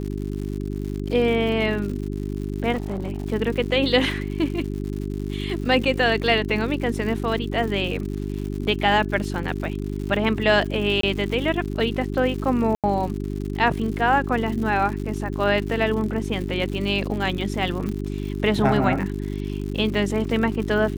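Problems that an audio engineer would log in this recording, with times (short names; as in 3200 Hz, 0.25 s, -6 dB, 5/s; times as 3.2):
crackle 140/s -31 dBFS
hum 50 Hz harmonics 8 -28 dBFS
2.74–3.26 clipped -22 dBFS
11.01–11.03 gap 23 ms
12.75–12.84 gap 87 ms
17.89 pop -18 dBFS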